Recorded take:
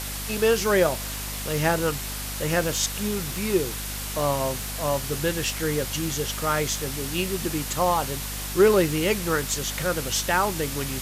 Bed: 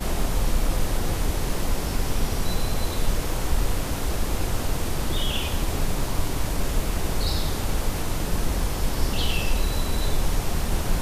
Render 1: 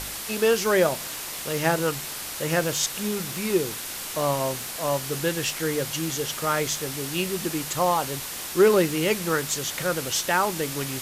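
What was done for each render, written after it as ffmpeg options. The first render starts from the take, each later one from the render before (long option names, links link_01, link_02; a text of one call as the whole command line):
ffmpeg -i in.wav -af "bandreject=frequency=50:width_type=h:width=4,bandreject=frequency=100:width_type=h:width=4,bandreject=frequency=150:width_type=h:width=4,bandreject=frequency=200:width_type=h:width=4,bandreject=frequency=250:width_type=h:width=4" out.wav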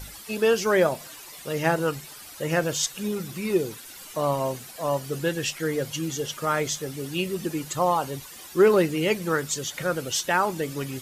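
ffmpeg -i in.wav -af "afftdn=noise_reduction=13:noise_floor=-34" out.wav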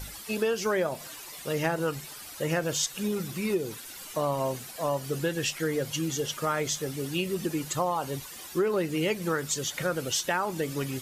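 ffmpeg -i in.wav -af "acompressor=threshold=-24dB:ratio=5" out.wav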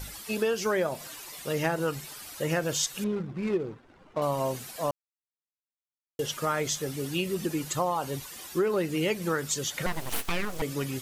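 ffmpeg -i in.wav -filter_complex "[0:a]asettb=1/sr,asplit=3[link_01][link_02][link_03];[link_01]atrim=end=3.044[link_04];[link_02]atrim=start=3.04:end=4.22,asetpts=PTS-STARTPTS,afade=type=in:duration=0.004:curve=qsin,afade=type=out:start_time=1.176:duration=0.004:curve=qsin,adynamicsmooth=sensitivity=4:basefreq=720[link_05];[link_03]atrim=start=4.216[link_06];[link_04][link_05]acrossfade=duration=0.004:curve1=hsin:curve2=qsin[link_07];[link_07][link_06]acrossfade=duration=0.004:curve1=qsin:curve2=hsin,asettb=1/sr,asplit=3[link_08][link_09][link_10];[link_08]atrim=end=9.864[link_11];[link_09]atrim=start=9.86:end=10.62,asetpts=PTS-STARTPTS,afade=type=in:duration=0.004:curve=qsin,afade=type=out:start_time=0.756:duration=0.004:curve=qsin,aeval=exprs='abs(val(0))':channel_layout=same[link_12];[link_10]atrim=start=10.616[link_13];[link_11][link_12]acrossfade=duration=0.004:curve1=hsin:curve2=qsin[link_14];[link_14][link_13]acrossfade=duration=0.004:curve1=qsin:curve2=hsin,asplit=3[link_15][link_16][link_17];[link_15]atrim=end=4.91,asetpts=PTS-STARTPTS,afade=type=out:start_time=4.906:duration=0.004:curve=hsin[link_18];[link_16]atrim=start=4.91:end=6.19,asetpts=PTS-STARTPTS,volume=0[link_19];[link_17]atrim=start=6.19,asetpts=PTS-STARTPTS,afade=type=in:duration=0.004:curve=hsin[link_20];[link_18][link_19][link_20]concat=n=3:v=0:a=1" out.wav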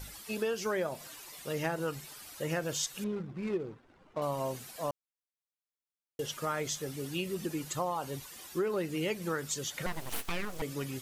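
ffmpeg -i in.wav -af "volume=-5.5dB" out.wav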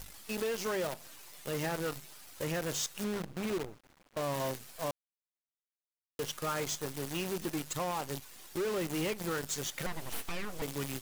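ffmpeg -i in.wav -af "asoftclip=type=tanh:threshold=-27dB,acrusher=bits=7:dc=4:mix=0:aa=0.000001" out.wav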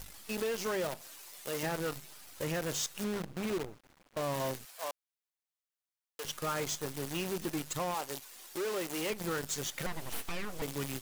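ffmpeg -i in.wav -filter_complex "[0:a]asettb=1/sr,asplit=3[link_01][link_02][link_03];[link_01]atrim=end=1.014[link_04];[link_02]atrim=start=1.01:end=1.63,asetpts=PTS-STARTPTS,afade=type=in:duration=0.004:curve=qsin,afade=type=out:start_time=0.616:duration=0.004:curve=qsin,bass=frequency=250:gain=-9,treble=frequency=4000:gain=3[link_05];[link_03]atrim=start=1.626[link_06];[link_04][link_05]acrossfade=duration=0.004:curve1=hsin:curve2=qsin[link_07];[link_07][link_06]acrossfade=duration=0.004:curve1=qsin:curve2=hsin,asettb=1/sr,asplit=3[link_08][link_09][link_10];[link_08]atrim=end=4.654[link_11];[link_09]atrim=start=4.65:end=6.25,asetpts=PTS-STARTPTS,afade=type=in:duration=0.004:curve=qsin,afade=type=out:start_time=1.596:duration=0.004:curve=qsin,highpass=650[link_12];[link_10]atrim=start=6.246[link_13];[link_11][link_12]acrossfade=duration=0.004:curve1=hsin:curve2=qsin[link_14];[link_14][link_13]acrossfade=duration=0.004:curve1=qsin:curve2=hsin,asettb=1/sr,asplit=3[link_15][link_16][link_17];[link_15]atrim=end=7.944[link_18];[link_16]atrim=start=7.94:end=9.1,asetpts=PTS-STARTPTS,afade=type=in:duration=0.004:curve=qsin,afade=type=out:start_time=1.156:duration=0.004:curve=qsin,bass=frequency=250:gain=-12,treble=frequency=4000:gain=2[link_19];[link_17]atrim=start=9.096[link_20];[link_18][link_19]acrossfade=duration=0.004:curve1=hsin:curve2=qsin[link_21];[link_21][link_20]acrossfade=duration=0.004:curve1=qsin:curve2=hsin" out.wav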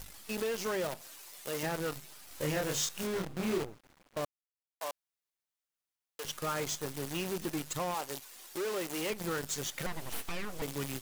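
ffmpeg -i in.wav -filter_complex "[0:a]asettb=1/sr,asplit=3[link_01][link_02][link_03];[link_01]atrim=end=2.284[link_04];[link_02]atrim=start=2.28:end=3.64,asetpts=PTS-STARTPTS,afade=type=in:duration=0.004:curve=qsin,afade=type=out:start_time=1.356:duration=0.004:curve=qsin,asplit=2[link_05][link_06];[link_06]adelay=27,volume=-2dB[link_07];[link_05][link_07]amix=inputs=2:normalize=0,atrim=end_sample=59976[link_08];[link_03]atrim=start=3.636[link_09];[link_04][link_08]acrossfade=duration=0.004:curve1=hsin:curve2=qsin[link_10];[link_10][link_09]acrossfade=duration=0.004:curve1=qsin:curve2=hsin,asplit=3[link_11][link_12][link_13];[link_11]atrim=end=4.25,asetpts=PTS-STARTPTS,afade=type=out:start_time=4.246:duration=0.004:curve=hsin[link_14];[link_12]atrim=start=4.25:end=4.81,asetpts=PTS-STARTPTS,volume=0[link_15];[link_13]atrim=start=4.81,asetpts=PTS-STARTPTS,afade=type=in:duration=0.004:curve=hsin[link_16];[link_14][link_15][link_16]concat=n=3:v=0:a=1" out.wav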